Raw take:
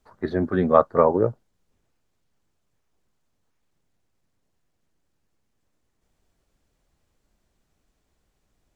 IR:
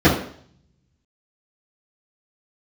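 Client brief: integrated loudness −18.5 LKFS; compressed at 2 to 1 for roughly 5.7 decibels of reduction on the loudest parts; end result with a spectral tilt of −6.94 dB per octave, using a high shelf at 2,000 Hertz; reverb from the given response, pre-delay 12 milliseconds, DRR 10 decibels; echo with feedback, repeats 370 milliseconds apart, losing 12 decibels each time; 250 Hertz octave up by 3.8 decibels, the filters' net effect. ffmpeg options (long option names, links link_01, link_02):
-filter_complex "[0:a]equalizer=frequency=250:width_type=o:gain=5,highshelf=frequency=2000:gain=-5,acompressor=threshold=-20dB:ratio=2,aecho=1:1:370|740|1110:0.251|0.0628|0.0157,asplit=2[link_01][link_02];[1:a]atrim=start_sample=2205,adelay=12[link_03];[link_02][link_03]afir=irnorm=-1:irlink=0,volume=-34dB[link_04];[link_01][link_04]amix=inputs=2:normalize=0,volume=4dB"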